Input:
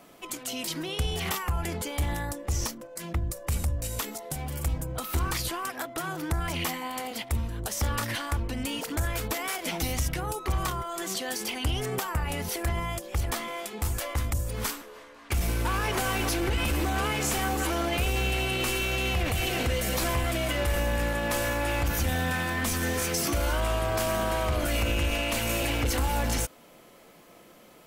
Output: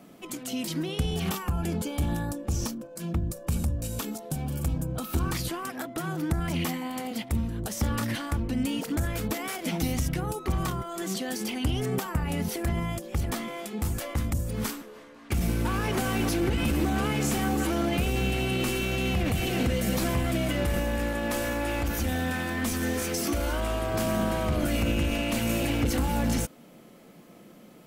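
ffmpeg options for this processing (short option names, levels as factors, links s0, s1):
-filter_complex "[0:a]asettb=1/sr,asplit=3[s0][s1][s2];[s0]atrim=end=1.144[s3];[s1]atrim=start=1.14:end=5.29,asetpts=PTS-STARTPTS,afade=t=in:d=0.004:c=qsin,afade=t=out:st=4.146:d=0.004:c=qsin,bandreject=f=2000:w=6.1[s4];[s2]atrim=start=5.286[s5];[s3][s4]acrossfade=d=0.004:c1=hsin:c2=qsin[s6];[s6][s5]acrossfade=d=0.004:c1=qsin:c2=hsin,asettb=1/sr,asplit=3[s7][s8][s9];[s7]atrim=end=20.794[s10];[s8]atrim=start=20.79:end=23.94,asetpts=PTS-STARTPTS,afade=t=in:d=0.004:c=qsin,afade=t=out:st=3.146:d=0.004:c=qsin,equalizer=f=150:t=o:w=0.71:g=-14[s11];[s9]atrim=start=23.936[s12];[s10][s11]acrossfade=d=0.004:c1=hsin:c2=qsin[s13];[s13][s12]acrossfade=d=0.004:c1=qsin:c2=hsin,equalizer=f=200:w=0.85:g=12,bandreject=f=1000:w=25,volume=0.708"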